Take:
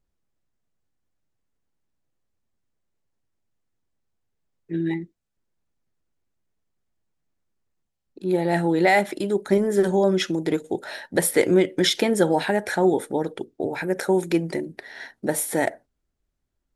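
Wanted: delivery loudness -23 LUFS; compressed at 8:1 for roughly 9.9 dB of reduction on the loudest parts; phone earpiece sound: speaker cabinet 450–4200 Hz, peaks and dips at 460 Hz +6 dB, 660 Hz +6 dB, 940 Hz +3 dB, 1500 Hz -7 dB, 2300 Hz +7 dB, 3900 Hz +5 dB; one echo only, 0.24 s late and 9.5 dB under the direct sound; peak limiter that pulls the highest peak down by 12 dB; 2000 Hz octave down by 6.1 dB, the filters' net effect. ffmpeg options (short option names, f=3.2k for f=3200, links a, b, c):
-af "equalizer=f=2k:t=o:g=-8.5,acompressor=threshold=-24dB:ratio=8,alimiter=level_in=1.5dB:limit=-24dB:level=0:latency=1,volume=-1.5dB,highpass=450,equalizer=f=460:t=q:w=4:g=6,equalizer=f=660:t=q:w=4:g=6,equalizer=f=940:t=q:w=4:g=3,equalizer=f=1.5k:t=q:w=4:g=-7,equalizer=f=2.3k:t=q:w=4:g=7,equalizer=f=3.9k:t=q:w=4:g=5,lowpass=f=4.2k:w=0.5412,lowpass=f=4.2k:w=1.3066,aecho=1:1:240:0.335,volume=13dB"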